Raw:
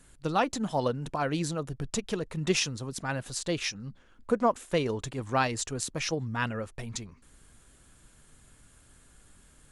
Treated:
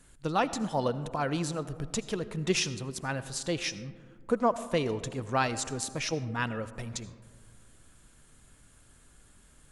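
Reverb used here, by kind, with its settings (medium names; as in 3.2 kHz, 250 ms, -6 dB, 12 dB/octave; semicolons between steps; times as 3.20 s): algorithmic reverb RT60 1.9 s, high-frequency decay 0.3×, pre-delay 40 ms, DRR 14 dB; trim -1 dB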